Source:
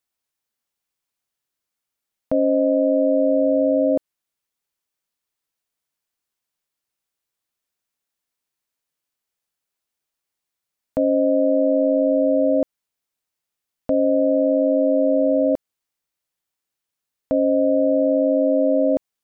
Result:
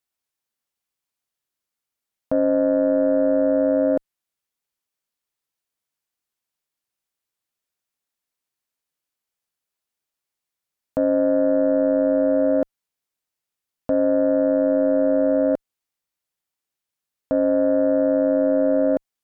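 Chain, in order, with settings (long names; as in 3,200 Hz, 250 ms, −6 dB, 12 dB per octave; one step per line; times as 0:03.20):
harmonic generator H 3 −23 dB, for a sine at −9.5 dBFS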